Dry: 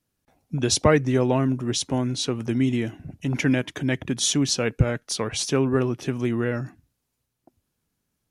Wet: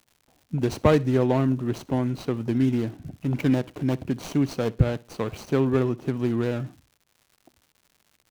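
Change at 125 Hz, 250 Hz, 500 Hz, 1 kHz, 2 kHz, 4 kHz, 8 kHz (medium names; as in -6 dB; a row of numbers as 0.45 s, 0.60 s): 0.0 dB, 0.0 dB, -0.5 dB, -1.5 dB, -6.5 dB, -13.0 dB, -18.5 dB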